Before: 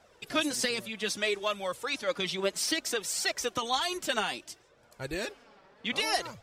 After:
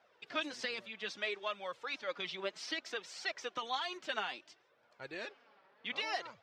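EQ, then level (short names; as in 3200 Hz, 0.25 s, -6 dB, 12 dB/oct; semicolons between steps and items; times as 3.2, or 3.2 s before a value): Bessel high-pass 160 Hz, order 2; air absorption 200 m; low shelf 490 Hz -11 dB; -3.5 dB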